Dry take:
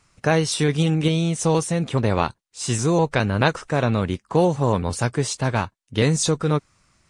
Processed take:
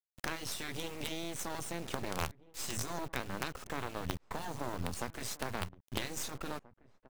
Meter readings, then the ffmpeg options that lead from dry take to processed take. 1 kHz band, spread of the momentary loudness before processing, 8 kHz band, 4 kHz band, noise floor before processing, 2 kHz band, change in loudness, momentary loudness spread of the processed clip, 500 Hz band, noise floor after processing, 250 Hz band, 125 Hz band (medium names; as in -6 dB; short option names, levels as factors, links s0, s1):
-15.5 dB, 5 LU, -13.5 dB, -13.0 dB, -71 dBFS, -14.0 dB, -18.0 dB, 3 LU, -21.0 dB, -73 dBFS, -21.0 dB, -23.5 dB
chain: -filter_complex "[0:a]afftfilt=real='re*lt(hypot(re,im),0.501)':imag='im*lt(hypot(re,im),0.501)':win_size=1024:overlap=0.75,acrossover=split=110[s0][s1];[s1]acompressor=threshold=0.02:ratio=4[s2];[s0][s2]amix=inputs=2:normalize=0,acrusher=bits=5:dc=4:mix=0:aa=0.000001,asplit=2[s3][s4];[s4]adelay=1633,volume=0.112,highshelf=f=4000:g=-36.7[s5];[s3][s5]amix=inputs=2:normalize=0,volume=0.891"